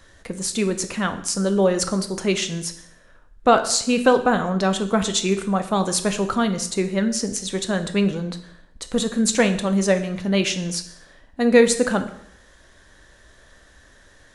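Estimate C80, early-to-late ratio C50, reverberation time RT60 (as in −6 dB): 15.0 dB, 12.0 dB, 0.70 s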